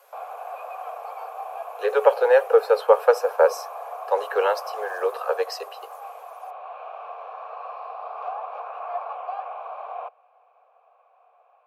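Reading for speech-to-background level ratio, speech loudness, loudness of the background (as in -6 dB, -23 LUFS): 14.0 dB, -21.5 LUFS, -35.5 LUFS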